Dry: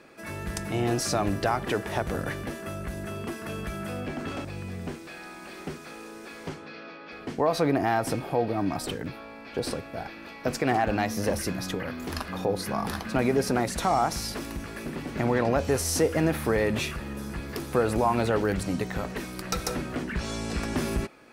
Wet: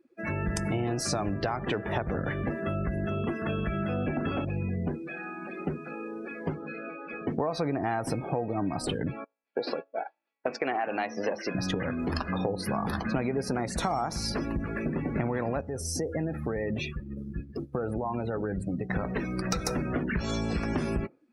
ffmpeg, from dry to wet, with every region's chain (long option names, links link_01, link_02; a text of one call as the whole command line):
ffmpeg -i in.wav -filter_complex "[0:a]asettb=1/sr,asplit=3[link_01][link_02][link_03];[link_01]atrim=end=9.244[link_04];[link_02]atrim=start=9.24:end=11.55,asetpts=PTS-STARTPTS,afade=type=in:duration=0.004:curve=qsin,afade=type=out:start_time=2.306:duration=0.004:curve=qsin,agate=range=-33dB:threshold=-33dB:ratio=3:release=100:detection=peak,highpass=380,lowpass=4900,equalizer=frequency=3000:width=3:gain=2[link_05];[link_03]atrim=start=11.546[link_06];[link_04][link_05]acrossfade=duration=0.004:curve1=hsin:curve2=qsin[link_07];[link_07][link_06]acrossfade=duration=0.004:curve1=qsin:curve2=hsin,asettb=1/sr,asplit=3[link_08][link_09][link_10];[link_08]atrim=end=15.614[link_11];[link_09]atrim=start=15.61:end=18.9,asetpts=PTS-STARTPTS,afade=type=in:duration=0.004:curve=qsin,afade=type=out:start_time=3.286:duration=0.004:curve=qsin,bandreject=frequency=1000:width=18,agate=range=-33dB:threshold=-29dB:ratio=3:release=100:detection=peak,acompressor=threshold=-36dB:ratio=2.5:attack=3.2:release=140:knee=1:detection=peak[link_12];[link_10]atrim=start=18.896[link_13];[link_11][link_12]acrossfade=duration=0.004:curve1=hsin:curve2=qsin[link_14];[link_14][link_13]acrossfade=duration=0.004:curve1=qsin:curve2=hsin,afftdn=noise_reduction=33:noise_floor=-39,equalizer=frequency=150:width=1.5:gain=3,acompressor=threshold=-33dB:ratio=6,volume=6.5dB" out.wav